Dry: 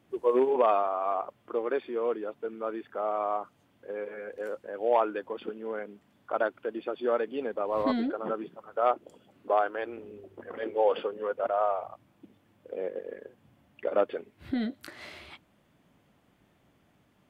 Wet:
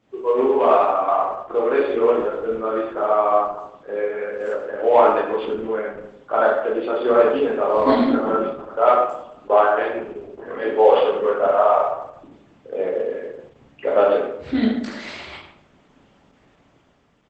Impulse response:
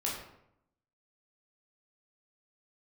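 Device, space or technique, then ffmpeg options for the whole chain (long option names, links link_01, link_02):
speakerphone in a meeting room: -filter_complex "[0:a]lowshelf=frequency=210:gain=-3.5[link_01];[1:a]atrim=start_sample=2205[link_02];[link_01][link_02]afir=irnorm=-1:irlink=0,asplit=2[link_03][link_04];[link_04]adelay=120,highpass=300,lowpass=3400,asoftclip=type=hard:threshold=-17dB,volume=-24dB[link_05];[link_03][link_05]amix=inputs=2:normalize=0,dynaudnorm=framelen=140:gausssize=11:maxgain=6dB,volume=2dB" -ar 48000 -c:a libopus -b:a 12k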